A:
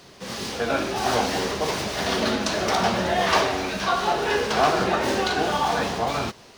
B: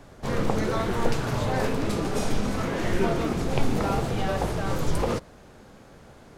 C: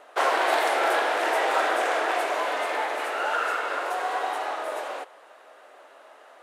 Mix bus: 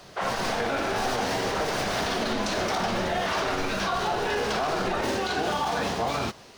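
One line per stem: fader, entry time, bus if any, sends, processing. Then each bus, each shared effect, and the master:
-1.0 dB, 0.00 s, no send, dry
-12.0 dB, 0.00 s, no send, dry
-6.0 dB, 0.00 s, no send, LPF 5100 Hz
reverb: off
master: limiter -18 dBFS, peak gain reduction 9.5 dB

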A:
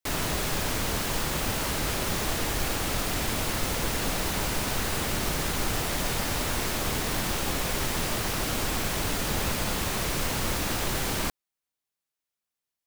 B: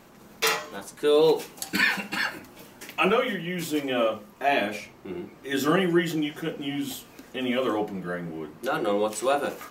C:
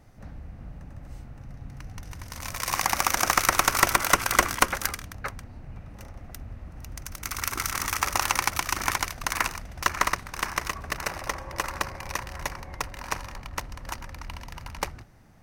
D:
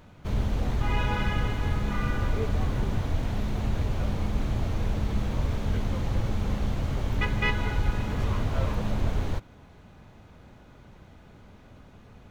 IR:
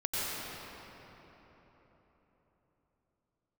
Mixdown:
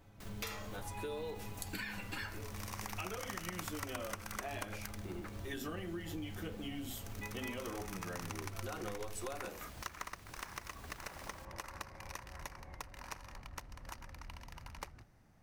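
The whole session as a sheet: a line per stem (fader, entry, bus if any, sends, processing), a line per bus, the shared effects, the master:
-18.5 dB, 0.15 s, no send, limiter -25 dBFS, peak gain reduction 9.5 dB
-2.5 dB, 0.00 s, no send, gate with hold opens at -39 dBFS; high shelf 11000 Hz +7 dB; compressor, threshold -26 dBFS, peak gain reduction 10 dB
-10.5 dB, 0.00 s, no send, dry
-2.5 dB, 0.00 s, no send, metallic resonator 100 Hz, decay 0.28 s, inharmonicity 0.008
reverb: off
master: compressor 3:1, threshold -43 dBFS, peak gain reduction 15 dB

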